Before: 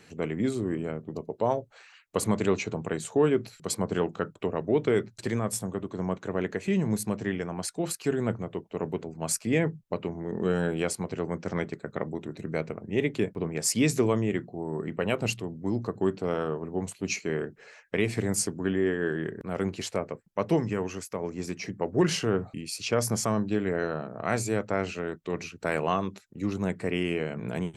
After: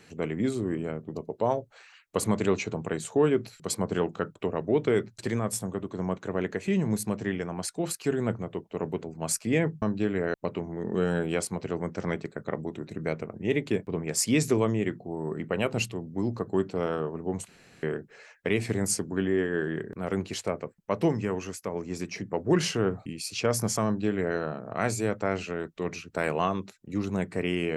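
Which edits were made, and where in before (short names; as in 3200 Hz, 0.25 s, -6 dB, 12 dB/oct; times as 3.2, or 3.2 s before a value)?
16.96–17.31 room tone
23.33–23.85 copy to 9.82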